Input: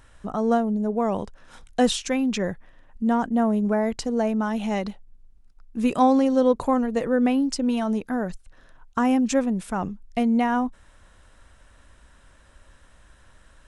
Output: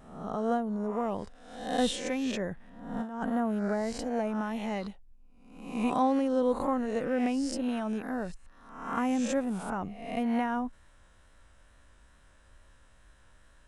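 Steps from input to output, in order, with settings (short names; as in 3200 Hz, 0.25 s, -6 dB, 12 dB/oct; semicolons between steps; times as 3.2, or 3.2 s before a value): spectral swells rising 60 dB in 0.74 s; dynamic EQ 5600 Hz, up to -5 dB, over -44 dBFS, Q 1.2; 2.51–3.3 negative-ratio compressor -24 dBFS, ratio -0.5; wow and flutter 29 cents; gain -8.5 dB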